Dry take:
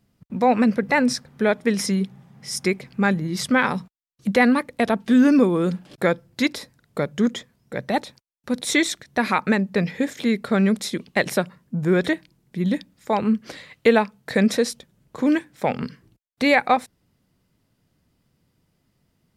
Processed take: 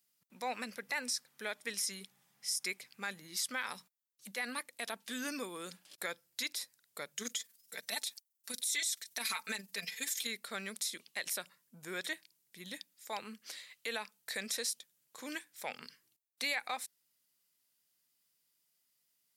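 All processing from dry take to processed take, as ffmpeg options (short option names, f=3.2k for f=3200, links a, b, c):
-filter_complex "[0:a]asettb=1/sr,asplit=3[a][b][c];[a]atrim=end=7.174[d];[b]atrim=start=7.17:end=10.27,asetpts=PTS-STARTPTS,afade=t=in:d=0.004:c=qsin,afade=t=out:st=3.096:d=0.004:c=qsin,tremolo=f=21:d=0.571,highshelf=f=2.8k:g=10.5,aecho=1:1:4.5:0.69,atrim=end_sample=136710[e];[c]atrim=start=10.266[f];[d][e]acrossfade=d=0.004:c1=hsin:c2=qsin[g];[g][f]acrossfade=d=0.004:c1=qsin:c2=hsin,aderivative,alimiter=level_in=1dB:limit=-24dB:level=0:latency=1:release=61,volume=-1dB"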